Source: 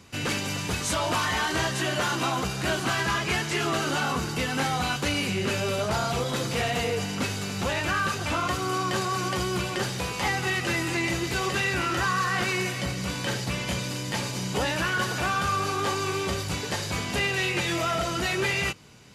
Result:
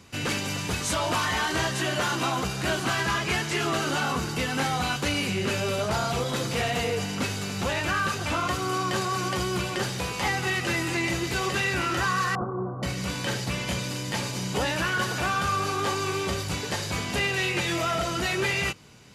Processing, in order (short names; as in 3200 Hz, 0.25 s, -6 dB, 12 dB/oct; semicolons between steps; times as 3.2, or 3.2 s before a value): 12.35–12.83 steep low-pass 1300 Hz 72 dB/oct